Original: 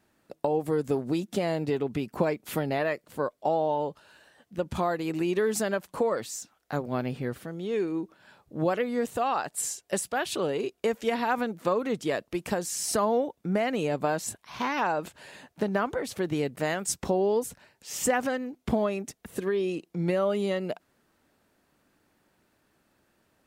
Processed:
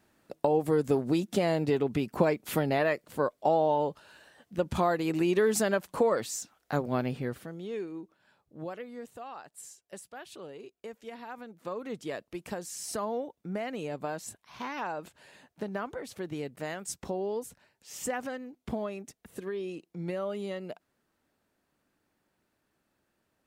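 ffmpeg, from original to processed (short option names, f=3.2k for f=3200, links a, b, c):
-af "volume=9dB,afade=t=out:st=6.86:d=1.02:silence=0.298538,afade=t=out:st=7.88:d=1.36:silence=0.473151,afade=t=in:st=11.44:d=0.52:silence=0.398107"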